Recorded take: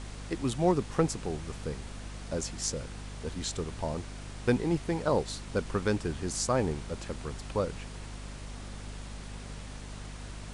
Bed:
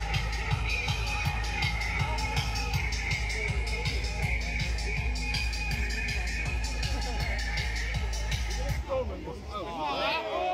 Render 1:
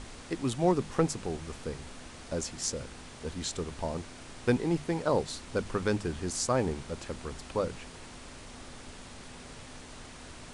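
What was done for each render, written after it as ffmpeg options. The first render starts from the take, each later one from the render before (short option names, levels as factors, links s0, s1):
-af "bandreject=f=50:t=h:w=6,bandreject=f=100:t=h:w=6,bandreject=f=150:t=h:w=6,bandreject=f=200:t=h:w=6"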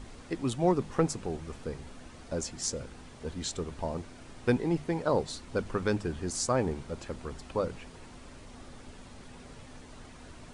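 -af "afftdn=nr=7:nf=-48"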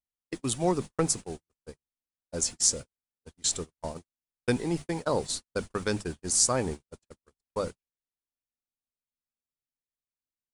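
-af "aemphasis=mode=production:type=75fm,agate=range=0.00126:threshold=0.0224:ratio=16:detection=peak"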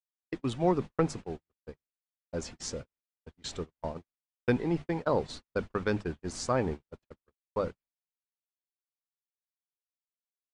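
-af "agate=range=0.0224:threshold=0.002:ratio=3:detection=peak,lowpass=2700"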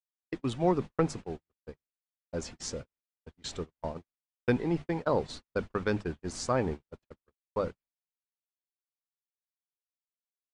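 -af anull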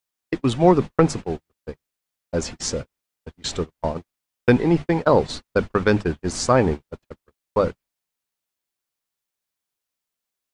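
-af "volume=3.76,alimiter=limit=0.708:level=0:latency=1"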